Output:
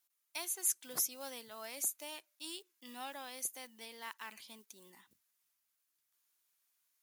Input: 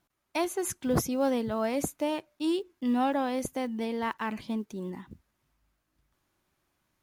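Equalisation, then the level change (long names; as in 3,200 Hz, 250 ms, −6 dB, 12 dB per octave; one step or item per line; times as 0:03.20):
first difference
+1.5 dB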